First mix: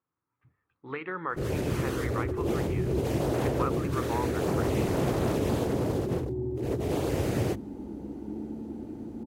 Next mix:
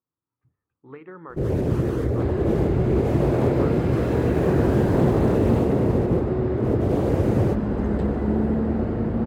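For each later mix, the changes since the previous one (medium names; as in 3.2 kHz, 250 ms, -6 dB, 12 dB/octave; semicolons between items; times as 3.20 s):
speech -10.0 dB; second sound: remove cascade formant filter u; master: add tilt shelf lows +8 dB, about 1.4 kHz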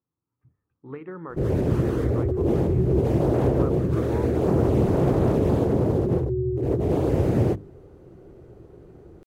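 speech: add bass shelf 440 Hz +7 dB; second sound: muted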